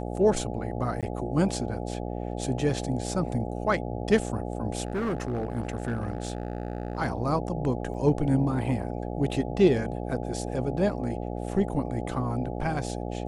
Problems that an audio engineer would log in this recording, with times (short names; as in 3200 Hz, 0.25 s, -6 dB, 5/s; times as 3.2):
buzz 60 Hz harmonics 14 -33 dBFS
1.01–1.03 gap 17 ms
4.85–7.01 clipped -24.5 dBFS
7.94 gap 4.2 ms